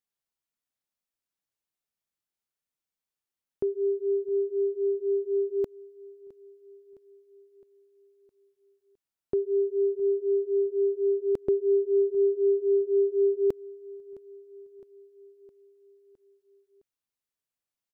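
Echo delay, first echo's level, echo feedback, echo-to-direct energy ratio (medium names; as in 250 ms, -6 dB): 662 ms, -21.5 dB, 60%, -19.5 dB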